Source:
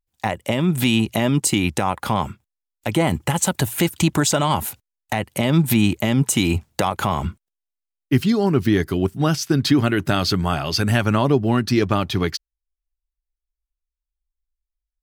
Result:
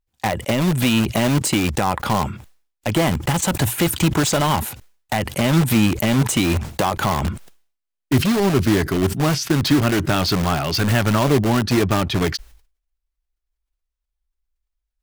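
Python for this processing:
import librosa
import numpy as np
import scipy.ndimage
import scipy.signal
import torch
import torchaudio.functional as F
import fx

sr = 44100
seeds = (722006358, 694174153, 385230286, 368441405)

p1 = fx.high_shelf(x, sr, hz=5500.0, db=-7.0)
p2 = (np.mod(10.0 ** (17.5 / 20.0) * p1 + 1.0, 2.0) - 1.0) / 10.0 ** (17.5 / 20.0)
p3 = p1 + (p2 * 10.0 ** (-5.0 / 20.0))
y = fx.sustainer(p3, sr, db_per_s=120.0)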